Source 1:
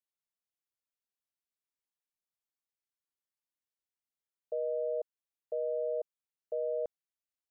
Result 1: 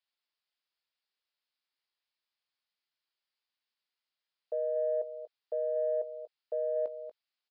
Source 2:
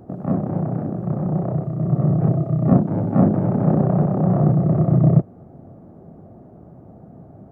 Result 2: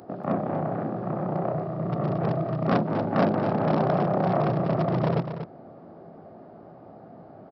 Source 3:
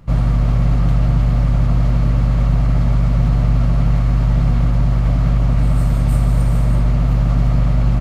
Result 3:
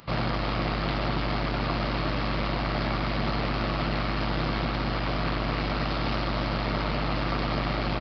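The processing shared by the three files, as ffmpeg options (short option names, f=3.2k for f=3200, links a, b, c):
-filter_complex "[0:a]asplit=2[a][b];[b]adelay=18,volume=-13dB[c];[a][c]amix=inputs=2:normalize=0,aresample=11025,asoftclip=type=hard:threshold=-11dB,aresample=44100,highshelf=f=3.3k:g=8.5,aecho=1:1:237:0.299,asplit=2[d][e];[e]asoftclip=type=tanh:threshold=-21.5dB,volume=-9.5dB[f];[d][f]amix=inputs=2:normalize=0,highpass=f=200:p=1,lowshelf=f=400:g=-11.5,volume=3dB"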